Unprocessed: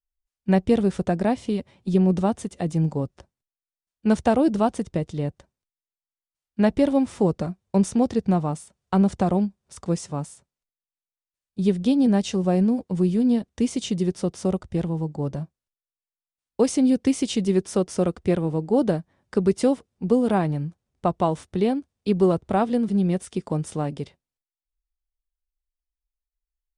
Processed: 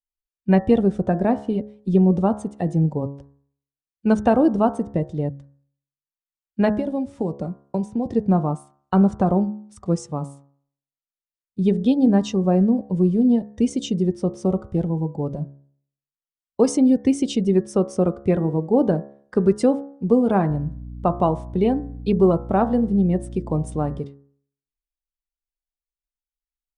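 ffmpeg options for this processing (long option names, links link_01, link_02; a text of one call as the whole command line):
ffmpeg -i in.wav -filter_complex "[0:a]asettb=1/sr,asplit=3[link_01][link_02][link_03];[link_01]atrim=end=6.764[link_04];[link_02]atrim=start=6.76:end=8.06,asetpts=PTS-STARTPTS,afade=type=in:duration=0.004:curve=qsin,afade=type=out:start_time=1.296:duration=0.004:curve=qsin,acrossover=split=120|2800[link_05][link_06][link_07];[link_05]acompressor=threshold=-46dB:ratio=4[link_08];[link_06]acompressor=threshold=-25dB:ratio=4[link_09];[link_07]acompressor=threshold=-46dB:ratio=4[link_10];[link_08][link_09][link_10]amix=inputs=3:normalize=0[link_11];[link_03]atrim=start=8.056[link_12];[link_04][link_11]acrossfade=duration=0.004:curve1=hsin:curve2=qsin[link_13];[link_13][link_12]acrossfade=duration=0.004:curve1=qsin:curve2=hsin,asettb=1/sr,asplit=3[link_14][link_15][link_16];[link_14]atrim=end=20.504[link_17];[link_15]atrim=start=20.5:end=23.99,asetpts=PTS-STARTPTS,afade=type=in:duration=0.004:curve=qsin,afade=type=out:start_time=3.486:duration=0.004:curve=qsin,aeval=exprs='val(0)+0.0158*(sin(2*PI*60*n/s)+sin(2*PI*2*60*n/s)/2+sin(2*PI*3*60*n/s)/3+sin(2*PI*4*60*n/s)/4+sin(2*PI*5*60*n/s)/5)':channel_layout=same[link_18];[link_16]atrim=start=23.986[link_19];[link_17][link_18]acrossfade=duration=0.004:curve1=hsin:curve2=qsin[link_20];[link_20][link_19]acrossfade=duration=0.004:curve1=qsin:curve2=hsin,afftdn=noise_reduction=13:noise_floor=-37,bandreject=frequency=69.91:width_type=h:width=4,bandreject=frequency=139.82:width_type=h:width=4,bandreject=frequency=209.73:width_type=h:width=4,bandreject=frequency=279.64:width_type=h:width=4,bandreject=frequency=349.55:width_type=h:width=4,bandreject=frequency=419.46:width_type=h:width=4,bandreject=frequency=489.37:width_type=h:width=4,bandreject=frequency=559.28:width_type=h:width=4,bandreject=frequency=629.19:width_type=h:width=4,bandreject=frequency=699.1:width_type=h:width=4,bandreject=frequency=769.01:width_type=h:width=4,bandreject=frequency=838.92:width_type=h:width=4,bandreject=frequency=908.83:width_type=h:width=4,bandreject=frequency=978.74:width_type=h:width=4,bandreject=frequency=1048.65:width_type=h:width=4,bandreject=frequency=1118.56:width_type=h:width=4,bandreject=frequency=1188.47:width_type=h:width=4,bandreject=frequency=1258.38:width_type=h:width=4,bandreject=frequency=1328.29:width_type=h:width=4,bandreject=frequency=1398.2:width_type=h:width=4,bandreject=frequency=1468.11:width_type=h:width=4,bandreject=frequency=1538.02:width_type=h:width=4,bandreject=frequency=1607.93:width_type=h:width=4,bandreject=frequency=1677.84:width_type=h:width=4,bandreject=frequency=1747.75:width_type=h:width=4,bandreject=frequency=1817.66:width_type=h:width=4,bandreject=frequency=1887.57:width_type=h:width=4,adynamicequalizer=threshold=0.01:dfrequency=1600:dqfactor=0.7:tfrequency=1600:tqfactor=0.7:attack=5:release=100:ratio=0.375:range=2:mode=cutabove:tftype=highshelf,volume=3dB" out.wav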